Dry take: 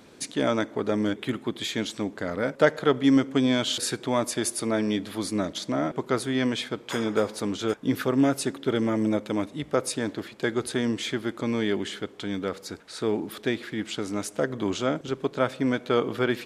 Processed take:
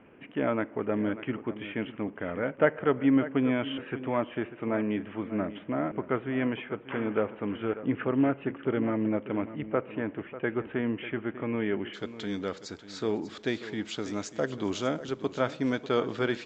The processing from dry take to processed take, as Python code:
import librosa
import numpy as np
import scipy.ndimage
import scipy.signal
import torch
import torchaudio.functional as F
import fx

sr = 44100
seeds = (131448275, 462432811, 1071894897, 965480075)

y = fx.steep_lowpass(x, sr, hz=fx.steps((0.0, 3000.0), (11.93, 7600.0)), slope=96)
y = y + 10.0 ** (-14.0 / 20.0) * np.pad(y, (int(593 * sr / 1000.0), 0))[:len(y)]
y = y * librosa.db_to_amplitude(-3.5)